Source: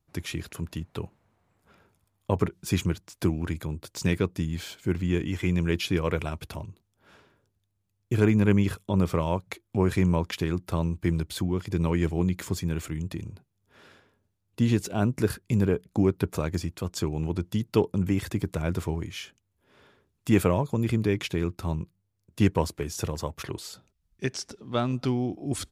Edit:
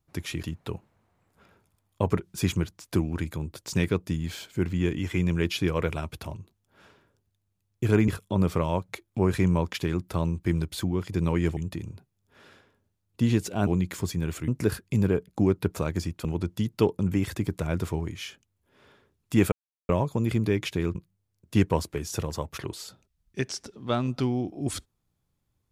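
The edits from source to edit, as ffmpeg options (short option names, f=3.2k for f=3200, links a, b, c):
-filter_complex "[0:a]asplit=9[a][b][c][d][e][f][g][h][i];[a]atrim=end=0.432[j];[b]atrim=start=0.718:end=8.372[k];[c]atrim=start=8.658:end=12.152[l];[d]atrim=start=12.958:end=15.062[m];[e]atrim=start=12.148:end=12.962[n];[f]atrim=start=15.058:end=16.832[o];[g]atrim=start=17.198:end=20.47,asetpts=PTS-STARTPTS,afade=t=out:st=3.268:d=0.004:c=hsin,apad=pad_dur=0.37[p];[h]atrim=start=20.47:end=21.532,asetpts=PTS-STARTPTS,afade=t=in:d=0.004:c=hsin[q];[i]atrim=start=21.798[r];[j][k]acrossfade=d=0.004:c1=hsin:c2=hsin[s];[s][l]acrossfade=d=0.004:c1=hsin:c2=hsin[t];[t][m]acrossfade=d=0.004:c1=hsin:c2=hsin[u];[u][n]acrossfade=d=0.004:c1=hsin:c2=hsin[v];[v][o]acrossfade=d=0.004:c1=hsin:c2=hsin[w];[p][q]concat=n=2:v=0:a=1[x];[w][x]acrossfade=d=0.004:c1=hsin:c2=hsin[y];[y][r]acrossfade=d=0.004:c1=hsin:c2=hsin"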